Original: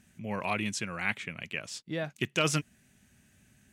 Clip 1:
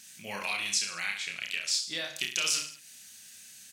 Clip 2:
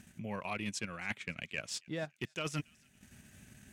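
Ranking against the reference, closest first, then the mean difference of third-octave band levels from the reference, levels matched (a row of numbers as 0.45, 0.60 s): 2, 1; 5.5, 11.5 dB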